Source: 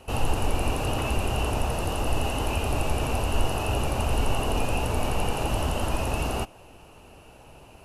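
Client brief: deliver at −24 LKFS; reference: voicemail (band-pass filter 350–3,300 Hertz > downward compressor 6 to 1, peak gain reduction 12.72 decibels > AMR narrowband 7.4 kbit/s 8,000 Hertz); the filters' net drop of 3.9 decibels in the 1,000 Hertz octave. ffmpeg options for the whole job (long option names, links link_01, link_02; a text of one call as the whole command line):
ffmpeg -i in.wav -af "highpass=350,lowpass=3300,equalizer=frequency=1000:width_type=o:gain=-5,acompressor=threshold=-42dB:ratio=6,volume=23.5dB" -ar 8000 -c:a libopencore_amrnb -b:a 7400 out.amr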